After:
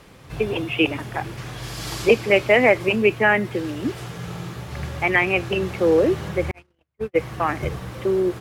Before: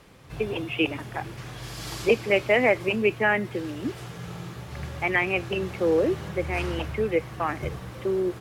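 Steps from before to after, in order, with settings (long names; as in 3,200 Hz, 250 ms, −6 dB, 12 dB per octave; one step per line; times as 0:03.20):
0:06.51–0:07.18: noise gate −22 dBFS, range −54 dB
level +5 dB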